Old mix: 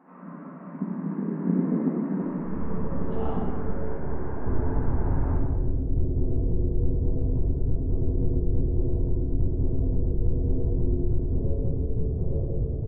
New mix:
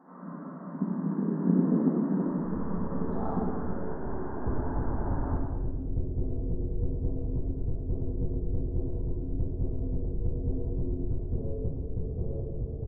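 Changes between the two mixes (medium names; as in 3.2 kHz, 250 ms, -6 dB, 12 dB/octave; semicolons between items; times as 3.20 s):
second sound: send -9.0 dB; master: add Butterworth band-stop 2.7 kHz, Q 1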